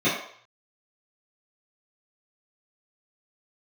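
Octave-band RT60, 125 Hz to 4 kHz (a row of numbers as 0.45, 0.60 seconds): 0.60, 0.40, 0.55, 0.60, 0.60, 0.55 seconds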